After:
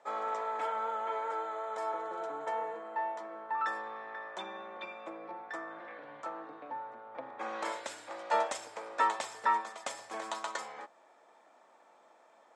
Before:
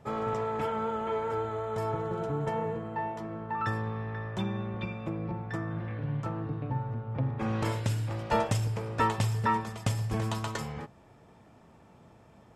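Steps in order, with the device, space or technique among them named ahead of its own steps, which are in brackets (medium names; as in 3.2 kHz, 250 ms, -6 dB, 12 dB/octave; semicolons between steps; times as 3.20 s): phone speaker on a table (cabinet simulation 420–8600 Hz, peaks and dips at 420 Hz -9 dB, 2.8 kHz -7 dB, 5.1 kHz -5 dB)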